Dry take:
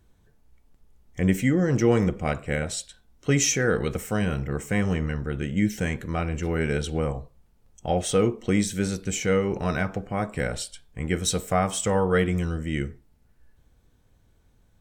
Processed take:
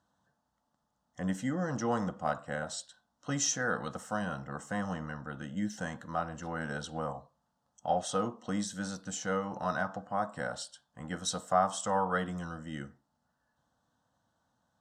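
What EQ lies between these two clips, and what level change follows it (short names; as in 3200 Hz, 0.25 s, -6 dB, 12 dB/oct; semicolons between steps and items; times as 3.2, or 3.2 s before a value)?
BPF 280–5300 Hz; bell 4100 Hz -2 dB; fixed phaser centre 960 Hz, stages 4; 0.0 dB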